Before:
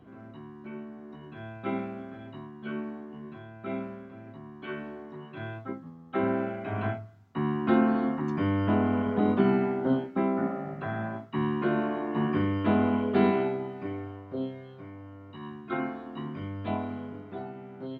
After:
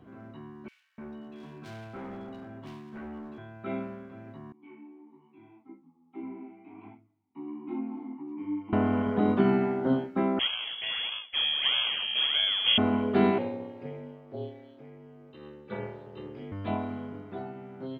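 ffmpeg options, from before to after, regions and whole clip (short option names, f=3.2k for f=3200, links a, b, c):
-filter_complex "[0:a]asettb=1/sr,asplit=3[a][b][c];[a]atrim=end=0.684[d];[b]atrim=start=0.68:end=3.38,asetpts=PTS-STARTPTS,afade=t=in:d=0.004:c=qsin,afade=t=out:st=2.696:d=0.004:c=qsin,highpass=f=75:w=0.5412,highpass=f=75:w=1.3066,asoftclip=type=hard:threshold=-38.5dB,acrossover=split=2200[e][f];[e]adelay=300[g];[g][f]amix=inputs=2:normalize=0,atrim=end_sample=119070[h];[c]atrim=start=3.376[i];[d][h]acrossfade=d=0.004:c1=hsin:c2=qsin[j];[j][i]acrossfade=d=0.004:c1=qsin:c2=hsin,asettb=1/sr,asplit=3[k][l][m];[k]atrim=end=4.524[n];[l]atrim=start=4.52:end=8.73,asetpts=PTS-STARTPTS,afade=t=in:d=0.004:c=qsin,afade=t=out:st=4.206:d=0.004:c=qsin,asplit=3[o][p][q];[o]bandpass=f=300:t=q:w=8,volume=0dB[r];[p]bandpass=f=870:t=q:w=8,volume=-6dB[s];[q]bandpass=f=2.24k:t=q:w=8,volume=-9dB[t];[r][s][t]amix=inputs=3:normalize=0,flanger=delay=18.5:depth=5.9:speed=1.2[u];[m]atrim=start=8.726[v];[n][u]acrossfade=d=0.004:c1=hsin:c2=qsin[w];[w][v]acrossfade=d=0.004:c1=qsin:c2=hsin,asettb=1/sr,asplit=3[x][y][z];[x]atrim=end=10.394[aa];[y]atrim=start=10.39:end=12.78,asetpts=PTS-STARTPTS,afade=t=in:d=0.004:c=qsin,afade=t=out:st=2.386:d=0.004:c=qsin,acrusher=samples=19:mix=1:aa=0.000001:lfo=1:lforange=19:lforate=1.6,lowpass=f=3k:t=q:w=0.5098,lowpass=f=3k:t=q:w=0.6013,lowpass=f=3k:t=q:w=0.9,lowpass=f=3k:t=q:w=2.563,afreqshift=-3500[ab];[z]atrim=start=12.776[ac];[aa][ab]acrossfade=d=0.004:c1=hsin:c2=qsin[ad];[ad][ac]acrossfade=d=0.004:c1=qsin:c2=hsin,asettb=1/sr,asplit=3[ae][af][ag];[ae]atrim=end=13.384[ah];[af]atrim=start=13.38:end=16.52,asetpts=PTS-STARTPTS,afade=t=in:d=0.004:c=qsin,afade=t=out:st=3.136:d=0.004:c=qsin,equalizer=f=1.2k:t=o:w=1.1:g=-9.5,aeval=exprs='val(0)*sin(2*PI*150*n/s)':c=same,highpass=f=110:w=0.5412,highpass=f=110:w=1.3066[ai];[ag]atrim=start=16.516[aj];[ah][ai]acrossfade=d=0.004:c1=hsin:c2=qsin[ak];[ak][aj]acrossfade=d=0.004:c1=qsin:c2=hsin"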